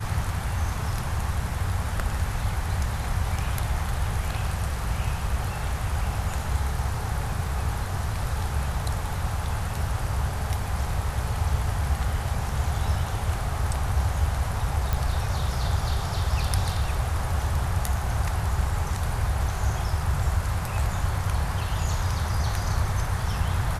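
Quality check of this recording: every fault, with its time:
14.93 pop

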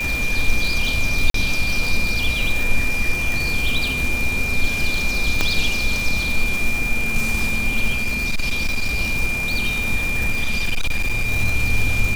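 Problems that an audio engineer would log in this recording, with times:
crackle 340/s -22 dBFS
tone 2400 Hz -22 dBFS
1.3–1.34 gap 43 ms
5.41 pop -4 dBFS
7.94–9 clipped -16 dBFS
10.3–11.26 clipped -15.5 dBFS

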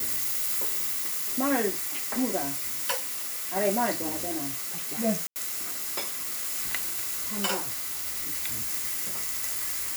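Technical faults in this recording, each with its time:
2.99–3.57 clipped -28.5 dBFS
5.27–5.36 gap 89 ms

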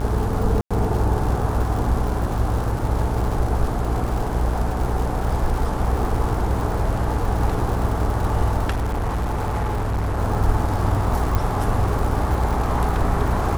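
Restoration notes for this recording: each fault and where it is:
buzz 60 Hz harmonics 29 -25 dBFS
crackle 160/s -27 dBFS
0.61–0.71 gap 96 ms
8.7–10.19 clipped -19.5 dBFS
11.35 pop

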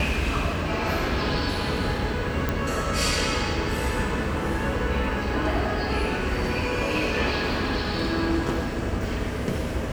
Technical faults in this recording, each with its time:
2.49 pop -11 dBFS

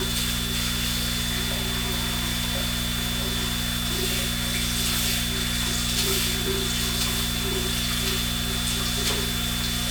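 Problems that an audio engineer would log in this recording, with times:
hum 60 Hz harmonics 4 -30 dBFS
tone 3500 Hz -31 dBFS

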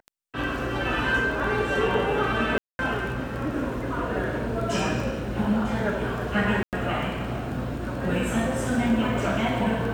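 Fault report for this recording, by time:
crackle 10/s -31 dBFS
2.58–2.79 gap 0.211 s
6.63–6.73 gap 98 ms

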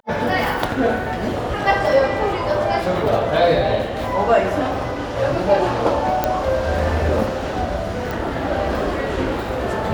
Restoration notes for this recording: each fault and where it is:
6.24 pop -4 dBFS
8.11 pop

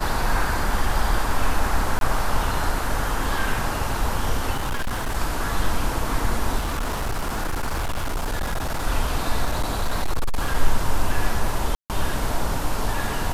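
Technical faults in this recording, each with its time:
1.99–2.01 gap 22 ms
4.53–5.16 clipped -21 dBFS
6.58–8.87 clipped -21 dBFS
9.44–10.55 clipped -17 dBFS
11.75–11.9 gap 0.148 s

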